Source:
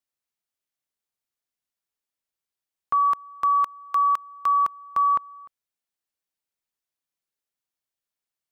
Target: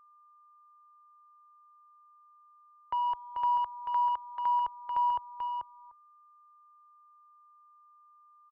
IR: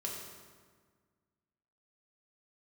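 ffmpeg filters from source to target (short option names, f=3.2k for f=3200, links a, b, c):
-filter_complex "[0:a]asettb=1/sr,asplit=3[a][b][c];[a]atrim=end=3.064[d];[b]atrim=start=3.06:end=3.93,asetpts=PTS-STARTPTS,afade=t=in:d=0.004:c=qsin,afade=t=out:st=0.866:d=0.004:c=qsin,aeval=exprs='val(0)+0.5*0.00891*sgn(val(0))':c=same[e];[c]atrim=start=3.926[f];[d][e]acrossfade=d=0.004:c1=hsin:c2=qsin[g];[g][f]acrossfade=d=0.004:c1=qsin:c2=hsin,aemphasis=mode=reproduction:type=bsi,anlmdn=0.0158,equalizer=f=410:w=2:g=-13,asplit=2[h][i];[i]acompressor=threshold=-36dB:ratio=10,volume=-0.5dB[j];[h][j]amix=inputs=2:normalize=0,highpass=f=150:t=q:w=0.5412,highpass=f=150:t=q:w=1.307,lowpass=f=2.1k:t=q:w=0.5176,lowpass=f=2.1k:t=q:w=0.7071,lowpass=f=2.1k:t=q:w=1.932,afreqshift=-170,asoftclip=type=tanh:threshold=-15dB,aecho=1:1:438:0.562,aeval=exprs='val(0)+0.00355*sin(2*PI*1200*n/s)':c=same,volume=-8.5dB"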